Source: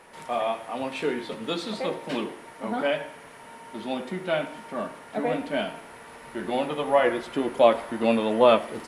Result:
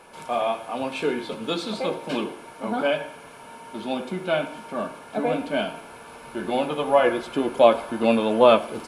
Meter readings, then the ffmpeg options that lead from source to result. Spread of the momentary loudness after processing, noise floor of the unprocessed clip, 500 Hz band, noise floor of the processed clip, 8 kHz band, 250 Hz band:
18 LU, -46 dBFS, +2.5 dB, -44 dBFS, +2.5 dB, +2.5 dB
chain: -af "asuperstop=centerf=1900:order=8:qfactor=7.1,volume=1.33"

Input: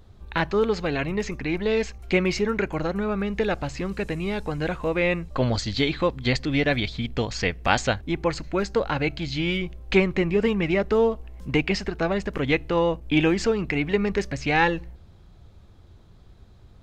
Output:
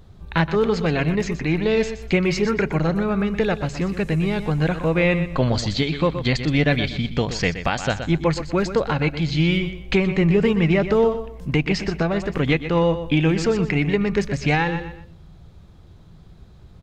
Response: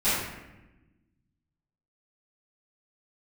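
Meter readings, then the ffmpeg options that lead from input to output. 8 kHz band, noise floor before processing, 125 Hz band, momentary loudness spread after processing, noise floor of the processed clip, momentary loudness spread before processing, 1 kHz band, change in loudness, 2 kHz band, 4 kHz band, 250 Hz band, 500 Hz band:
+2.0 dB, -50 dBFS, +7.5 dB, 5 LU, -46 dBFS, 7 LU, +1.0 dB, +3.5 dB, +1.5 dB, +2.0 dB, +4.5 dB, +2.5 dB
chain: -filter_complex "[0:a]equalizer=f=160:t=o:w=0.33:g=9.5,asplit=2[s0][s1];[s1]aecho=0:1:122|244|366:0.282|0.0761|0.0205[s2];[s0][s2]amix=inputs=2:normalize=0,alimiter=limit=0.282:level=0:latency=1:release=337,volume=1.41"

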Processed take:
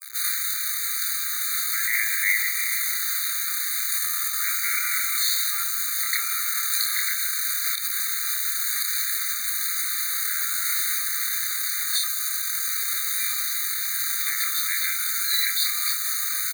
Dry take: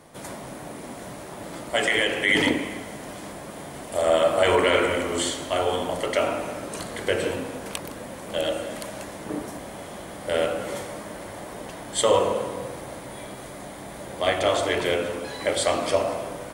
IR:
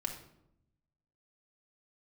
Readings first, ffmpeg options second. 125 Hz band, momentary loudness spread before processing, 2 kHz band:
under -40 dB, 17 LU, +1.5 dB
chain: -filter_complex "[0:a]acompressor=threshold=0.0282:ratio=2.5,equalizer=f=125:t=o:w=1:g=8,equalizer=f=250:t=o:w=1:g=-12,equalizer=f=500:t=o:w=1:g=10,equalizer=f=1000:t=o:w=1:g=-6,equalizer=f=4000:t=o:w=1:g=5,equalizer=f=8000:t=o:w=1:g=-12,acrossover=split=140[s0][s1];[s1]acompressor=threshold=0.0398:ratio=5[s2];[s0][s2]amix=inputs=2:normalize=0,acrusher=bits=6:mix=0:aa=0.000001,aeval=exprs='sgn(val(0))*max(abs(val(0))-0.00631,0)':c=same,crystalizer=i=4:c=0,asplit=2[s3][s4];[s4]adelay=27,volume=0.631[s5];[s3][s5]amix=inputs=2:normalize=0,alimiter=level_in=6.31:limit=0.891:release=50:level=0:latency=1,afftfilt=real='re*eq(mod(floor(b*sr/1024/1200),2),1)':imag='im*eq(mod(floor(b*sr/1024/1200),2),1)':win_size=1024:overlap=0.75,volume=0.501"

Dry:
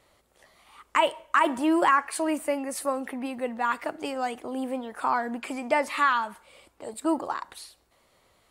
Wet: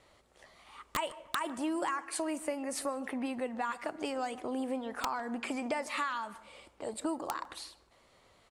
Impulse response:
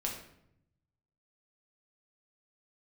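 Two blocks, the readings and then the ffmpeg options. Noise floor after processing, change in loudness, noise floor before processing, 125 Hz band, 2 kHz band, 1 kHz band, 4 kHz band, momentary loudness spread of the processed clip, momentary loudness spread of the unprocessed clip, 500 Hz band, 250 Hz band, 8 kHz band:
-66 dBFS, -9.0 dB, -66 dBFS, no reading, -10.0 dB, -11.0 dB, -5.5 dB, 10 LU, 11 LU, -8.0 dB, -7.0 dB, -3.5 dB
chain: -filter_complex "[0:a]lowpass=8400,acrossover=split=5500[s0][s1];[s0]acompressor=threshold=0.0251:ratio=6[s2];[s2][s1]amix=inputs=2:normalize=0,aeval=exprs='(mod(10.6*val(0)+1,2)-1)/10.6':c=same,asplit=2[s3][s4];[s4]adelay=152,lowpass=f=1300:p=1,volume=0.15,asplit=2[s5][s6];[s6]adelay=152,lowpass=f=1300:p=1,volume=0.44,asplit=2[s7][s8];[s8]adelay=152,lowpass=f=1300:p=1,volume=0.44,asplit=2[s9][s10];[s10]adelay=152,lowpass=f=1300:p=1,volume=0.44[s11];[s3][s5][s7][s9][s11]amix=inputs=5:normalize=0"

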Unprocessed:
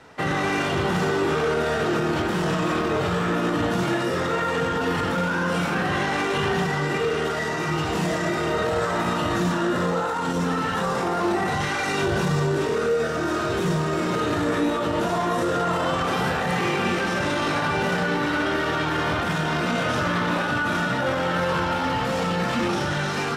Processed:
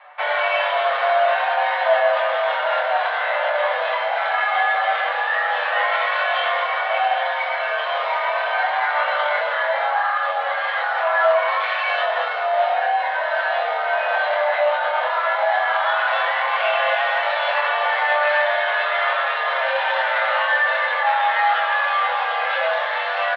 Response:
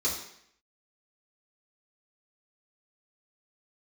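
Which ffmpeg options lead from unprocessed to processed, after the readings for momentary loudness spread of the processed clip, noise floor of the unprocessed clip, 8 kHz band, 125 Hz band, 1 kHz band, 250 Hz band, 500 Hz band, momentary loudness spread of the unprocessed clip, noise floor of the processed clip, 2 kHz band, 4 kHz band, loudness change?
4 LU, -26 dBFS, under -25 dB, under -40 dB, +6.5 dB, under -40 dB, +2.5 dB, 1 LU, -24 dBFS, +7.0 dB, +3.0 dB, +4.0 dB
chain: -filter_complex "[0:a]adynamicsmooth=sensitivity=5:basefreq=2500,asplit=2[s0][s1];[s1]adelay=25,volume=0.531[s2];[s0][s2]amix=inputs=2:normalize=0,flanger=delay=6.7:depth=4.1:regen=38:speed=0.11:shape=triangular,highpass=f=270:t=q:w=0.5412,highpass=f=270:t=q:w=1.307,lowpass=f=3500:t=q:w=0.5176,lowpass=f=3500:t=q:w=0.7071,lowpass=f=3500:t=q:w=1.932,afreqshift=300,asplit=2[s3][s4];[1:a]atrim=start_sample=2205,asetrate=41454,aresample=44100[s5];[s4][s5]afir=irnorm=-1:irlink=0,volume=0.0891[s6];[s3][s6]amix=inputs=2:normalize=0,volume=2.37"

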